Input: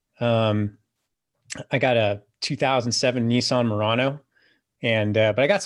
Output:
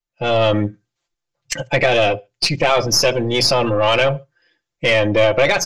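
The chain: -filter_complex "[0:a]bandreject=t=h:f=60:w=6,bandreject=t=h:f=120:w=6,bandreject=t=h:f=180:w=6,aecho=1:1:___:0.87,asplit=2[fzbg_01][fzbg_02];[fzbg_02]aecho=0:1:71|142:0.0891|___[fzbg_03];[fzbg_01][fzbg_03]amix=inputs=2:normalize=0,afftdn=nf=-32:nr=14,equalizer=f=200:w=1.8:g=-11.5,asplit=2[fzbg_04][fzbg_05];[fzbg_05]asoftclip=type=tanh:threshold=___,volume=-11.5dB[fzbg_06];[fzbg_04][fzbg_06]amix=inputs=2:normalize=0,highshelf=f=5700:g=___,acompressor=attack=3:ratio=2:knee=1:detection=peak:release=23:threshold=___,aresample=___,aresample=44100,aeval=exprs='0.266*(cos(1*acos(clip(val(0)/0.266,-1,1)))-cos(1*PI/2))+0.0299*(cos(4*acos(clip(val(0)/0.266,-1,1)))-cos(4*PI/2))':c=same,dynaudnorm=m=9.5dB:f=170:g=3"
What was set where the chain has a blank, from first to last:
5.8, 0.0267, -17.5dB, 3, -25dB, 16000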